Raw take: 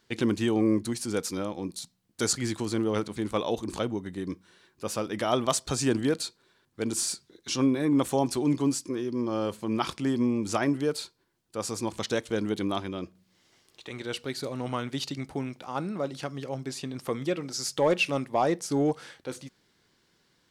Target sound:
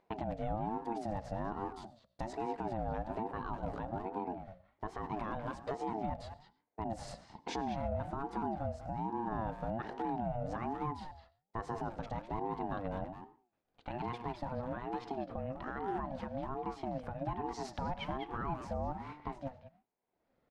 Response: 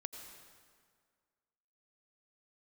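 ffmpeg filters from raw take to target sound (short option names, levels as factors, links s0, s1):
-filter_complex "[0:a]lowpass=1300,aemphasis=mode=production:type=50kf,agate=range=0.0224:threshold=0.00316:ratio=3:detection=peak,lowshelf=f=190:g=9.5,bandreject=f=60:t=h:w=6,bandreject=f=120:t=h:w=6,bandreject=f=180:t=h:w=6,bandreject=f=240:t=h:w=6,bandreject=f=300:t=h:w=6,acompressor=threshold=0.0316:ratio=5,alimiter=level_in=2.37:limit=0.0631:level=0:latency=1:release=401,volume=0.422,acompressor=mode=upward:threshold=0.00112:ratio=2.5,asplit=2[s0][s1];[s1]adelay=200,highpass=300,lowpass=3400,asoftclip=type=hard:threshold=0.0106,volume=0.501[s2];[s0][s2]amix=inputs=2:normalize=0,asplit=2[s3][s4];[1:a]atrim=start_sample=2205,atrim=end_sample=6615[s5];[s4][s5]afir=irnorm=-1:irlink=0,volume=0.596[s6];[s3][s6]amix=inputs=2:normalize=0,aeval=exprs='val(0)*sin(2*PI*480*n/s+480*0.25/1.2*sin(2*PI*1.2*n/s))':c=same,volume=1.33"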